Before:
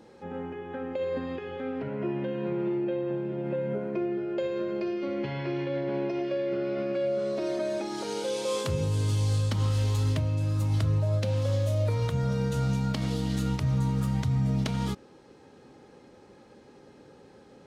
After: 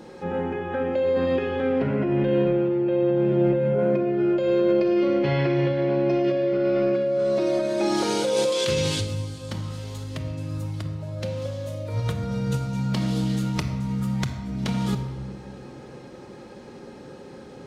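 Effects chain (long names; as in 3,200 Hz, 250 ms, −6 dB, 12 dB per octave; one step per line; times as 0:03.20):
0:08.52–0:09.01: meter weighting curve D
compressor whose output falls as the input rises −32 dBFS, ratio −1
rectangular room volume 1,400 cubic metres, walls mixed, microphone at 0.94 metres
level +5.5 dB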